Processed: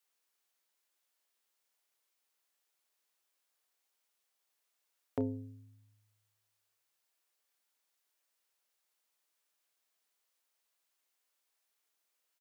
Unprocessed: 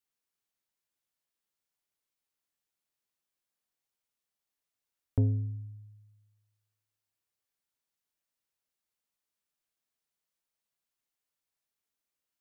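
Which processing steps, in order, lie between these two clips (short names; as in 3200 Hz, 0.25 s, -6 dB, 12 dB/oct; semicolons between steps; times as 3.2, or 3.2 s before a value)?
HPF 410 Hz 12 dB/oct; doubler 30 ms -13 dB; gain +6.5 dB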